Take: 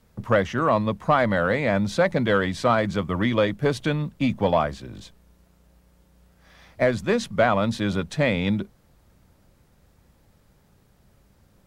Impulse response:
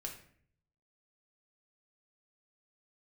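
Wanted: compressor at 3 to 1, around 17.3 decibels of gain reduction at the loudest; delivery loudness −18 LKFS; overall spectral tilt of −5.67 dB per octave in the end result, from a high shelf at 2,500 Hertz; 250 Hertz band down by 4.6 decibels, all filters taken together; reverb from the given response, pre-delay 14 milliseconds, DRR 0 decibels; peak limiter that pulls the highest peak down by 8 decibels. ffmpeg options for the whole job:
-filter_complex "[0:a]equalizer=frequency=250:width_type=o:gain=-6,highshelf=frequency=2500:gain=-6,acompressor=threshold=-41dB:ratio=3,alimiter=level_in=7.5dB:limit=-24dB:level=0:latency=1,volume=-7.5dB,asplit=2[link_01][link_02];[1:a]atrim=start_sample=2205,adelay=14[link_03];[link_02][link_03]afir=irnorm=-1:irlink=0,volume=2dB[link_04];[link_01][link_04]amix=inputs=2:normalize=0,volume=21.5dB"

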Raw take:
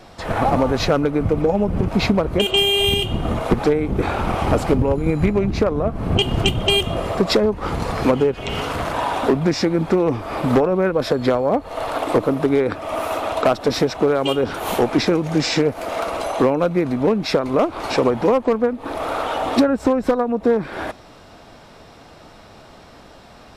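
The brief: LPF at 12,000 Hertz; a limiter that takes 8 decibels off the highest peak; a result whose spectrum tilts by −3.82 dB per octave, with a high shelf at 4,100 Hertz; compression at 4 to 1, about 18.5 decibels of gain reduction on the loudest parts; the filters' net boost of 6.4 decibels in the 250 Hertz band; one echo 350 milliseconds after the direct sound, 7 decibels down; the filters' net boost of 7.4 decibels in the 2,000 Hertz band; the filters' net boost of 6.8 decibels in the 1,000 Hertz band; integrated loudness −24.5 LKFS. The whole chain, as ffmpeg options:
ffmpeg -i in.wav -af "lowpass=12000,equalizer=frequency=250:width_type=o:gain=7.5,equalizer=frequency=1000:width_type=o:gain=6.5,equalizer=frequency=2000:width_type=o:gain=6.5,highshelf=frequency=4100:gain=5,acompressor=threshold=-29dB:ratio=4,alimiter=limit=-22dB:level=0:latency=1,aecho=1:1:350:0.447,volume=6.5dB" out.wav

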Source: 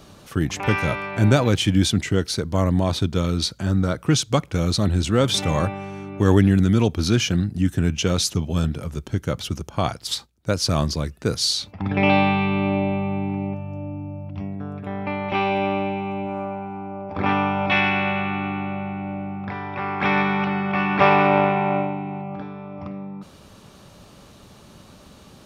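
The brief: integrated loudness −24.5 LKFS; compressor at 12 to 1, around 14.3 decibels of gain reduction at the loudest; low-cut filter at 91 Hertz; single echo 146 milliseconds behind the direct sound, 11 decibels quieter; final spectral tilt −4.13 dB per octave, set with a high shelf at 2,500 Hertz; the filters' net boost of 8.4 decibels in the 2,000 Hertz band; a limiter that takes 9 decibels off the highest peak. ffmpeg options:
ffmpeg -i in.wav -af "highpass=91,equalizer=frequency=2000:width_type=o:gain=7,highshelf=frequency=2500:gain=7,acompressor=threshold=-22dB:ratio=12,alimiter=limit=-17dB:level=0:latency=1,aecho=1:1:146:0.282,volume=3.5dB" out.wav

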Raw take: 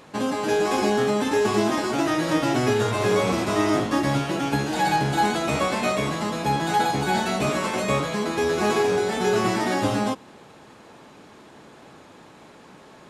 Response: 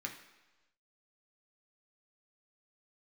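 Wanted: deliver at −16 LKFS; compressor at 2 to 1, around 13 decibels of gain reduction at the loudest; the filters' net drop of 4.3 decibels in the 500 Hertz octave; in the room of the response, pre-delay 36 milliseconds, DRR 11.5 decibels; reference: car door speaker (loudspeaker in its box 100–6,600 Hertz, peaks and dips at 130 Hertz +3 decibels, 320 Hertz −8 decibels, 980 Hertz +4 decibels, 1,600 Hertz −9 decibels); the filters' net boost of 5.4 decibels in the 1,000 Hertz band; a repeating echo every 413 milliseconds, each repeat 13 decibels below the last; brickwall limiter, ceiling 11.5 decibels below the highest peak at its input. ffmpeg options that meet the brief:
-filter_complex "[0:a]equalizer=frequency=500:width_type=o:gain=-6,equalizer=frequency=1000:width_type=o:gain=7.5,acompressor=threshold=-39dB:ratio=2,alimiter=level_in=7.5dB:limit=-24dB:level=0:latency=1,volume=-7.5dB,aecho=1:1:413|826|1239:0.224|0.0493|0.0108,asplit=2[link_01][link_02];[1:a]atrim=start_sample=2205,adelay=36[link_03];[link_02][link_03]afir=irnorm=-1:irlink=0,volume=-12dB[link_04];[link_01][link_04]amix=inputs=2:normalize=0,highpass=100,equalizer=frequency=130:width_type=q:width=4:gain=3,equalizer=frequency=320:width_type=q:width=4:gain=-8,equalizer=frequency=980:width_type=q:width=4:gain=4,equalizer=frequency=1600:width_type=q:width=4:gain=-9,lowpass=frequency=6600:width=0.5412,lowpass=frequency=6600:width=1.3066,volume=24dB"

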